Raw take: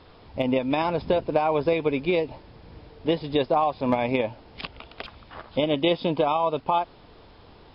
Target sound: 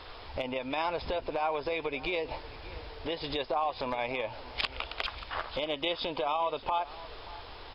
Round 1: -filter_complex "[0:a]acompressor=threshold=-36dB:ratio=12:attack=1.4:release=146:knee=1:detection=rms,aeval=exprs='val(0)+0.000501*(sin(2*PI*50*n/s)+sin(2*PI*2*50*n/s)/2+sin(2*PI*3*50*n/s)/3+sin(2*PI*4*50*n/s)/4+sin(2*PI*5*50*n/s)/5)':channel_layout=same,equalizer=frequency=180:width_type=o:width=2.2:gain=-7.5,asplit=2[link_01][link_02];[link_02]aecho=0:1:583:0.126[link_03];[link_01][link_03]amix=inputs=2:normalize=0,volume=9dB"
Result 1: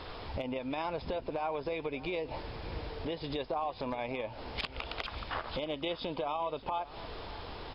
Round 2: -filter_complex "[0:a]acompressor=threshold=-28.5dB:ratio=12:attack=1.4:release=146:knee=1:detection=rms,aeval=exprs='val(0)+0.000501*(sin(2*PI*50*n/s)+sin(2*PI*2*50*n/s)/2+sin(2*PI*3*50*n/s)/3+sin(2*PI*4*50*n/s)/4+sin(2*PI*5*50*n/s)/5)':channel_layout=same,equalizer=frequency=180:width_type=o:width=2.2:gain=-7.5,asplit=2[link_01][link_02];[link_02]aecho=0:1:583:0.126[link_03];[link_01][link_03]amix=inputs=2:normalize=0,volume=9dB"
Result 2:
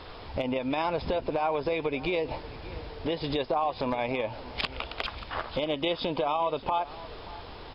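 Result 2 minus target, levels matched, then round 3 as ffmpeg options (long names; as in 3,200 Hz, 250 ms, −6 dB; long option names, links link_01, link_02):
250 Hz band +4.5 dB
-filter_complex "[0:a]acompressor=threshold=-28.5dB:ratio=12:attack=1.4:release=146:knee=1:detection=rms,aeval=exprs='val(0)+0.000501*(sin(2*PI*50*n/s)+sin(2*PI*2*50*n/s)/2+sin(2*PI*3*50*n/s)/3+sin(2*PI*4*50*n/s)/4+sin(2*PI*5*50*n/s)/5)':channel_layout=same,equalizer=frequency=180:width_type=o:width=2.2:gain=-18.5,asplit=2[link_01][link_02];[link_02]aecho=0:1:583:0.126[link_03];[link_01][link_03]amix=inputs=2:normalize=0,volume=9dB"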